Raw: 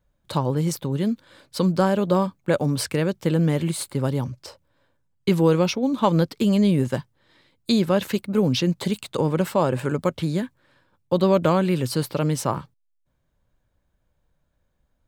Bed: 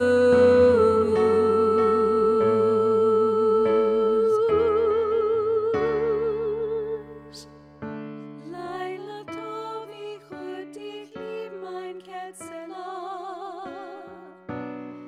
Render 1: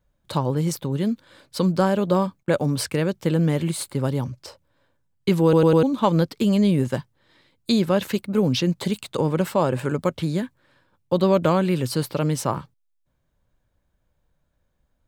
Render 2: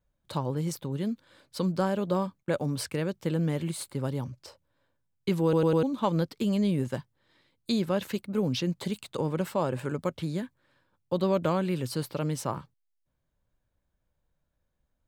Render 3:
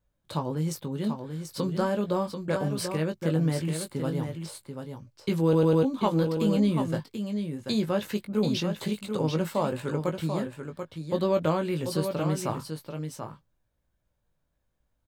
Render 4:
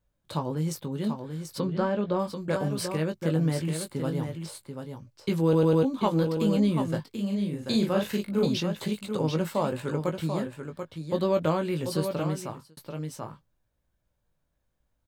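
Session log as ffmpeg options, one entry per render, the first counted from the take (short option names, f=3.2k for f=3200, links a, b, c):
-filter_complex "[0:a]asettb=1/sr,asplit=3[a][b][c];[a]atrim=end=2.434[d];[b]atrim=start=2.43:end=3.08,asetpts=PTS-STARTPTS,afade=t=in:d=0.004:c=qsin,afade=t=out:st=0.646:d=0.004:c=qsin,agate=range=-19dB:threshold=-43dB:ratio=16:release=100:detection=peak[e];[c]atrim=start=3.076[f];[d][e]acrossfade=d=0.004:c1=hsin:c2=qsin[g];[g][f]acrossfade=d=0.004:c1=qsin:c2=hsin,asplit=5[h][i][j][k][l];[h]atrim=end=5.532[m];[i]atrim=start=5.428:end=5.532[n];[j]atrim=start=5.428:end=5.532[o];[k]atrim=start=5.428:end=5.532[p];[l]atrim=start=5.828[q];[m][n]acrossfade=d=0.004:c1=hsin:c2=hsin[r];[r][o]acrossfade=d=0.004:c1=hsin:c2=hsin[s];[s][p]acrossfade=d=0.004:c1=hsin:c2=hsin[t];[t][q]acrossfade=d=0.004:c1=hsin:c2=hsin"
-af "volume=-7.5dB"
-filter_complex "[0:a]asplit=2[a][b];[b]adelay=19,volume=-6.5dB[c];[a][c]amix=inputs=2:normalize=0,asplit=2[d][e];[e]aecho=0:1:737:0.447[f];[d][f]amix=inputs=2:normalize=0"
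-filter_complex "[0:a]asplit=3[a][b][c];[a]afade=t=out:st=1.58:d=0.02[d];[b]lowpass=3.6k,afade=t=in:st=1.58:d=0.02,afade=t=out:st=2.18:d=0.02[e];[c]afade=t=in:st=2.18:d=0.02[f];[d][e][f]amix=inputs=3:normalize=0,asettb=1/sr,asplit=3[g][h][i];[g]atrim=end=7.114[j];[h]atrim=start=7.11:end=8.46,asetpts=PTS-STARTPTS,afade=t=in:d=0.004:c=qsin,afade=t=out:st=1.346:d=0.004:c=qsin,asplit=2[k][l];[l]adelay=40,volume=-2.5dB[m];[k][m]amix=inputs=2:normalize=0,atrim=end_sample=59535[n];[i]atrim=start=8.456[o];[j][n]acrossfade=d=0.004:c1=hsin:c2=qsin[p];[p][o]acrossfade=d=0.004:c1=qsin:c2=hsin,asplit=2[q][r];[q]atrim=end=12.77,asetpts=PTS-STARTPTS,afade=t=out:st=12.17:d=0.6[s];[r]atrim=start=12.77,asetpts=PTS-STARTPTS,afade=t=in:d=0.004:c=hsin[t];[s][t]concat=n=2:v=0:a=1"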